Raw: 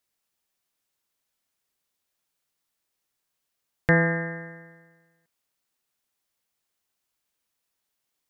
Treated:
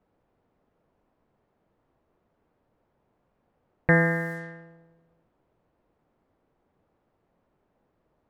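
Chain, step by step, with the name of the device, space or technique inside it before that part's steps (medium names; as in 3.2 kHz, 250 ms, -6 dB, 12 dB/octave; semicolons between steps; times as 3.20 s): cassette deck with a dynamic noise filter (white noise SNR 23 dB; level-controlled noise filter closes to 570 Hz, open at -26.5 dBFS)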